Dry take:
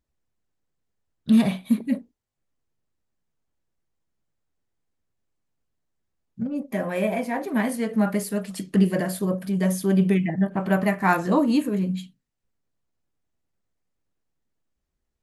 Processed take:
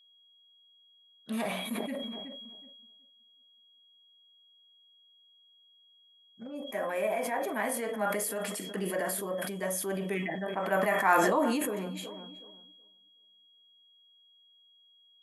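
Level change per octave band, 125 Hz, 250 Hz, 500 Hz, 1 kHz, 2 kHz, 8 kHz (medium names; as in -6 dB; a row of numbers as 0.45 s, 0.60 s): -16.0 dB, -14.0 dB, -3.5 dB, -2.0 dB, -2.0 dB, +1.5 dB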